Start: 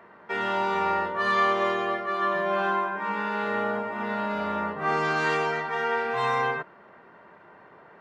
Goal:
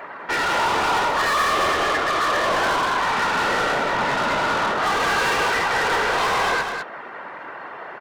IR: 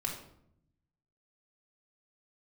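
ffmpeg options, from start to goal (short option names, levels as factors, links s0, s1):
-filter_complex "[0:a]afftfilt=real='hypot(re,im)*cos(2*PI*random(0))':imag='hypot(re,im)*sin(2*PI*random(1))':win_size=512:overlap=0.75,asplit=2[s0][s1];[s1]highpass=f=720:p=1,volume=31.6,asoftclip=type=tanh:threshold=0.178[s2];[s0][s2]amix=inputs=2:normalize=0,lowpass=f=7000:p=1,volume=0.501,aecho=1:1:206:0.501"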